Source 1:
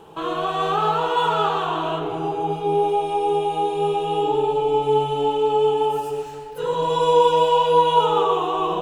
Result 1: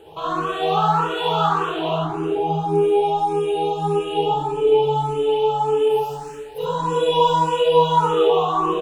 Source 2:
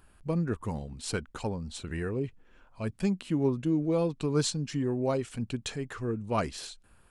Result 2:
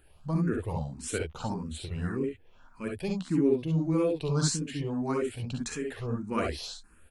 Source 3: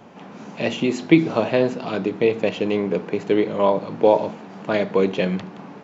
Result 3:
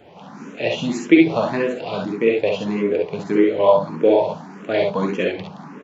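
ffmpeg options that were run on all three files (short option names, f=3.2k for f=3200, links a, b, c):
-filter_complex "[0:a]aecho=1:1:44|57|69:0.355|0.531|0.596,asplit=2[a][b];[b]afreqshift=1.7[c];[a][c]amix=inputs=2:normalize=1,volume=1.5dB"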